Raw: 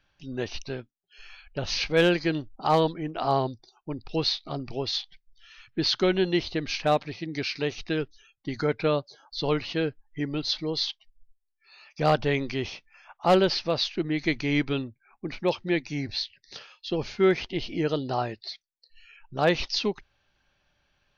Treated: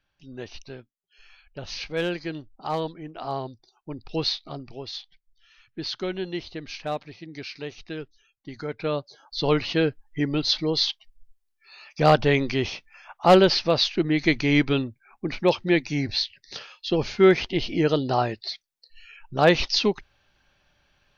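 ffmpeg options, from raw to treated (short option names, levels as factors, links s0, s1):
-af "volume=3.98,afade=t=in:st=3.49:d=0.79:silence=0.473151,afade=t=out:st=4.28:d=0.43:silence=0.446684,afade=t=in:st=8.68:d=0.97:silence=0.266073"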